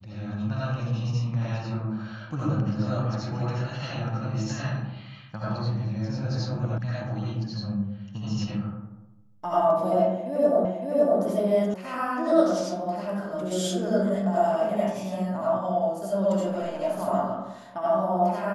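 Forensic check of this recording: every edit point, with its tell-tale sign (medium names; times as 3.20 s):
6.78 s: sound stops dead
10.65 s: repeat of the last 0.56 s
11.74 s: sound stops dead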